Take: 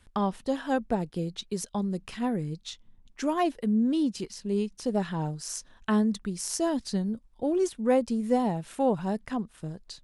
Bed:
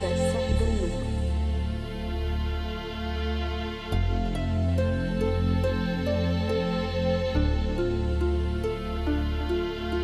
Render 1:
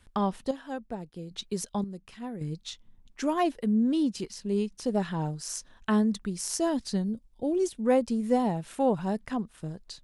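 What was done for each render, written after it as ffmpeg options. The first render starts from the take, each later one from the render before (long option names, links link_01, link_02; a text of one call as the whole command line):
ffmpeg -i in.wav -filter_complex "[0:a]asettb=1/sr,asplit=3[link_01][link_02][link_03];[link_01]atrim=end=7.044[link_04];[link_02]atrim=start=7.04:end=7.79,asetpts=PTS-STARTPTS,afade=type=in:duration=0.004:curve=qsin,afade=type=out:start_time=0.746:duration=0.004:curve=qsin,equalizer=frequency=1300:width=0.94:gain=-9[link_05];[link_03]atrim=start=7.786[link_06];[link_04][link_05]acrossfade=duration=0.004:curve1=hsin:curve2=qsin[link_07];[link_07][link_06]acrossfade=duration=0.004:curve1=qsin:curve2=hsin,asplit=5[link_08][link_09][link_10][link_11][link_12];[link_08]atrim=end=0.512[link_13];[link_09]atrim=start=0.508:end=1.312,asetpts=PTS-STARTPTS,volume=-9dB[link_14];[link_10]atrim=start=1.308:end=1.842[link_15];[link_11]atrim=start=1.838:end=2.412,asetpts=PTS-STARTPTS,volume=-9dB[link_16];[link_12]atrim=start=2.408[link_17];[link_13][link_14]acrossfade=duration=0.004:curve1=hsin:curve2=hsin[link_18];[link_18][link_15]acrossfade=duration=0.004:curve1=hsin:curve2=hsin[link_19];[link_19][link_16]acrossfade=duration=0.004:curve1=hsin:curve2=hsin[link_20];[link_20][link_17]acrossfade=duration=0.004:curve1=hsin:curve2=hsin" out.wav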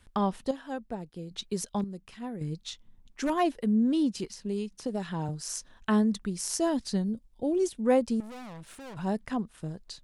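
ffmpeg -i in.wav -filter_complex "[0:a]asettb=1/sr,asplit=3[link_01][link_02][link_03];[link_01]atrim=end=1.734[link_04];[link_02]atrim=start=1.73:end=3.3,asetpts=PTS-STARTPTS,afade=type=in:duration=0.004:curve=qsin,afade=type=out:start_time=1.566:duration=0.004:curve=qsin,aeval=exprs='0.0841*(abs(mod(val(0)/0.0841+3,4)-2)-1)':channel_layout=same[link_05];[link_03]atrim=start=3.296[link_06];[link_04][link_05]acrossfade=duration=0.004:curve1=hsin:curve2=qsin[link_07];[link_07][link_06]acrossfade=duration=0.004:curve1=qsin:curve2=hsin,asettb=1/sr,asplit=3[link_08][link_09][link_10];[link_08]atrim=end=4.344[link_11];[link_09]atrim=start=4.34:end=5.29,asetpts=PTS-STARTPTS,afade=type=in:duration=0.004:curve=qsin,afade=type=out:start_time=0.946:duration=0.004:curve=qsin,acrossover=split=92|2500[link_12][link_13][link_14];[link_12]acompressor=threshold=-56dB:ratio=4[link_15];[link_13]acompressor=threshold=-29dB:ratio=4[link_16];[link_14]acompressor=threshold=-46dB:ratio=4[link_17];[link_15][link_16][link_17]amix=inputs=3:normalize=0[link_18];[link_10]atrim=start=5.286[link_19];[link_11][link_18]acrossfade=duration=0.004:curve1=hsin:curve2=qsin[link_20];[link_20][link_19]acrossfade=duration=0.004:curve1=qsin:curve2=hsin,asettb=1/sr,asplit=3[link_21][link_22][link_23];[link_21]atrim=end=8.204[link_24];[link_22]atrim=start=8.2:end=8.97,asetpts=PTS-STARTPTS,afade=type=in:duration=0.004:curve=qsin,afade=type=out:start_time=0.766:duration=0.004:curve=qsin,aeval=exprs='(tanh(126*val(0)+0.5)-tanh(0.5))/126':channel_layout=same[link_25];[link_23]atrim=start=8.966[link_26];[link_24][link_25]acrossfade=duration=0.004:curve1=hsin:curve2=qsin[link_27];[link_27][link_26]acrossfade=duration=0.004:curve1=qsin:curve2=hsin" out.wav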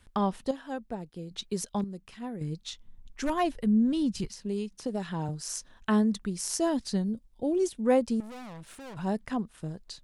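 ffmpeg -i in.wav -filter_complex "[0:a]asettb=1/sr,asplit=3[link_01][link_02][link_03];[link_01]atrim=end=2.674[link_04];[link_02]atrim=start=2.67:end=4.29,asetpts=PTS-STARTPTS,afade=type=in:duration=0.004:curve=qsin,afade=type=out:start_time=1.616:duration=0.004:curve=qsin,asubboost=boost=11.5:cutoff=140[link_05];[link_03]atrim=start=4.286[link_06];[link_04][link_05]acrossfade=duration=0.004:curve1=hsin:curve2=qsin[link_07];[link_07][link_06]acrossfade=duration=0.004:curve1=qsin:curve2=hsin" out.wav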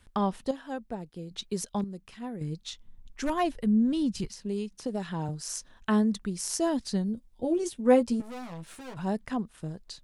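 ffmpeg -i in.wav -filter_complex "[0:a]asettb=1/sr,asplit=3[link_01][link_02][link_03];[link_01]atrim=end=7.154[link_04];[link_02]atrim=start=7.15:end=8.94,asetpts=PTS-STARTPTS,afade=type=in:duration=0.004:curve=qsin,afade=type=out:start_time=1.786:duration=0.004:curve=qsin,asplit=2[link_05][link_06];[link_06]adelay=12,volume=-4.5dB[link_07];[link_05][link_07]amix=inputs=2:normalize=0,atrim=end_sample=78939[link_08];[link_03]atrim=start=8.936[link_09];[link_04][link_08]acrossfade=duration=0.004:curve1=hsin:curve2=qsin[link_10];[link_10][link_09]acrossfade=duration=0.004:curve1=qsin:curve2=hsin" out.wav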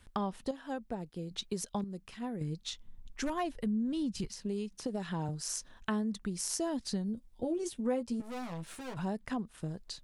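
ffmpeg -i in.wav -af "acompressor=threshold=-33dB:ratio=3" out.wav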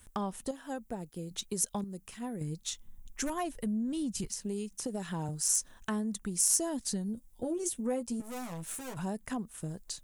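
ffmpeg -i in.wav -af "asoftclip=type=tanh:threshold=-21dB,aexciter=amount=3.1:drive=7.6:freq=6300" out.wav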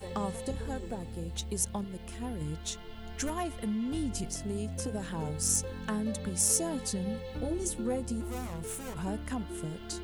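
ffmpeg -i in.wav -i bed.wav -filter_complex "[1:a]volume=-14dB[link_01];[0:a][link_01]amix=inputs=2:normalize=0" out.wav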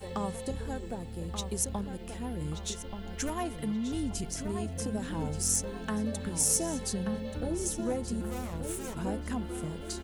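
ffmpeg -i in.wav -filter_complex "[0:a]asplit=2[link_01][link_02];[link_02]adelay=1180,lowpass=frequency=3400:poles=1,volume=-7.5dB,asplit=2[link_03][link_04];[link_04]adelay=1180,lowpass=frequency=3400:poles=1,volume=0.37,asplit=2[link_05][link_06];[link_06]adelay=1180,lowpass=frequency=3400:poles=1,volume=0.37,asplit=2[link_07][link_08];[link_08]adelay=1180,lowpass=frequency=3400:poles=1,volume=0.37[link_09];[link_01][link_03][link_05][link_07][link_09]amix=inputs=5:normalize=0" out.wav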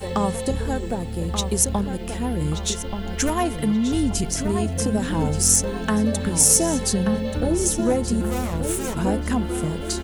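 ffmpeg -i in.wav -af "volume=11.5dB,alimiter=limit=-1dB:level=0:latency=1" out.wav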